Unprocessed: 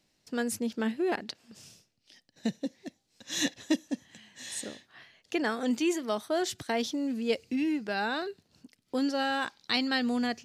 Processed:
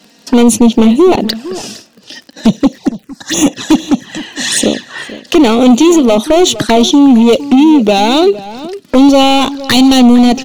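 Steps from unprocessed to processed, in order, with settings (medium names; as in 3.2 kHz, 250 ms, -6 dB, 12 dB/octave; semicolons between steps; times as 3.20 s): Chebyshev high-pass 200 Hz, order 2; treble shelf 7.5 kHz -9 dB; band-stop 2.2 kHz, Q 6.7; in parallel at +2.5 dB: compression, threshold -35 dBFS, peak gain reduction 12.5 dB; on the sum: overload inside the chain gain 28 dB; touch-sensitive flanger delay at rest 4.5 ms, full sweep at -31 dBFS; crackle 47 per s -55 dBFS; echo from a far wall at 79 m, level -16 dB; 2.78–3.55 s: touch-sensitive phaser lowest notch 260 Hz, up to 4.2 kHz, full sweep at -32.5 dBFS; loudness maximiser +27 dB; trim -1 dB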